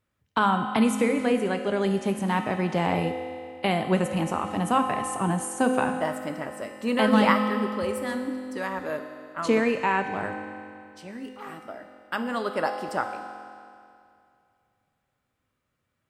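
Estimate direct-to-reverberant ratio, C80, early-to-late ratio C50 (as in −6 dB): 5.5 dB, 8.0 dB, 7.0 dB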